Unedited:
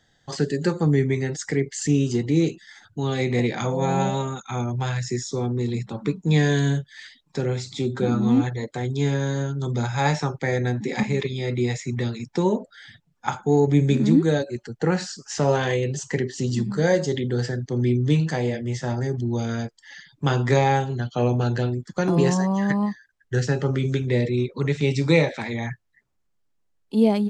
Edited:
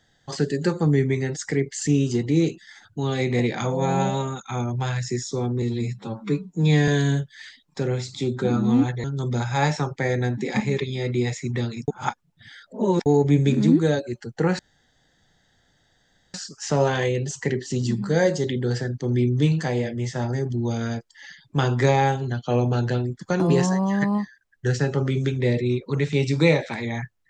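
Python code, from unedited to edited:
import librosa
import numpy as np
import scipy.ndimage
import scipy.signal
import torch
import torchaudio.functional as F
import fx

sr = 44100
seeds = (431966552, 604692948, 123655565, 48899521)

y = fx.edit(x, sr, fx.stretch_span(start_s=5.62, length_s=0.84, factor=1.5),
    fx.cut(start_s=8.62, length_s=0.85),
    fx.reverse_span(start_s=12.31, length_s=1.18),
    fx.insert_room_tone(at_s=15.02, length_s=1.75), tone=tone)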